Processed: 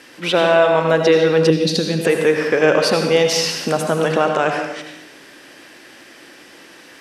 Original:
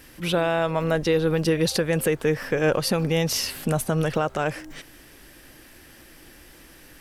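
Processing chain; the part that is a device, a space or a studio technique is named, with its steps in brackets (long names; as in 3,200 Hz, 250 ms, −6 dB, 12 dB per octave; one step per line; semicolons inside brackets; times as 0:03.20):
supermarket ceiling speaker (band-pass filter 280–6,600 Hz; convolution reverb RT60 0.95 s, pre-delay 73 ms, DRR 3.5 dB)
0:01.50–0:02.05: octave-band graphic EQ 125/250/500/1,000/2,000/4,000/8,000 Hz +3/+6/−7/−10/−10/+3/−6 dB
level +7.5 dB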